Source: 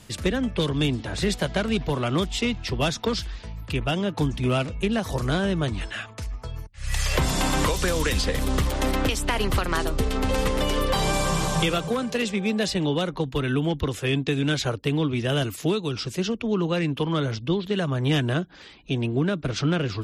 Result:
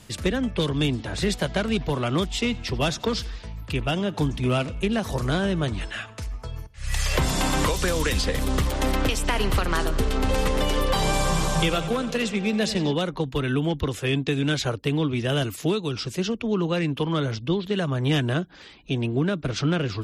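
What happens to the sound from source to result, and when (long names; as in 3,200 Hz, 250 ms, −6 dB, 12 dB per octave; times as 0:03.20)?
0:02.24–0:07.29: repeating echo 88 ms, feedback 45%, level −22 dB
0:08.71–0:12.93: bucket-brigade delay 93 ms, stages 4,096, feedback 74%, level −15 dB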